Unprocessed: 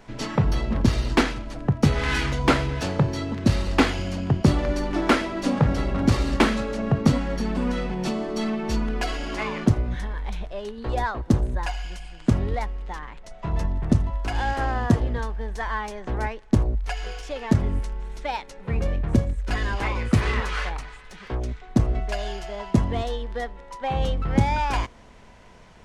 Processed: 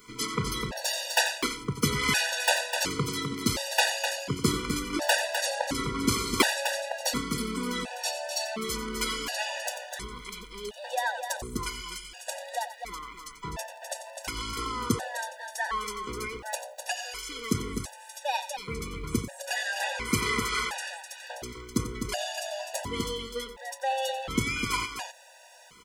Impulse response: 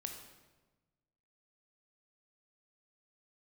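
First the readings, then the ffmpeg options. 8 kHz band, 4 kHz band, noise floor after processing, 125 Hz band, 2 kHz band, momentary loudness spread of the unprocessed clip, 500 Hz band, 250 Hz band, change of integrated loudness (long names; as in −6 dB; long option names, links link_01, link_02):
+9.5 dB, +4.0 dB, −49 dBFS, −13.5 dB, 0.0 dB, 11 LU, −5.0 dB, −9.5 dB, −5.0 dB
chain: -af "aemphasis=mode=production:type=riaa,aecho=1:1:90.38|253.6:0.251|0.447,afftfilt=real='re*gt(sin(2*PI*0.7*pts/sr)*(1-2*mod(floor(b*sr/1024/490),2)),0)':imag='im*gt(sin(2*PI*0.7*pts/sr)*(1-2*mod(floor(b*sr/1024/490),2)),0)':win_size=1024:overlap=0.75"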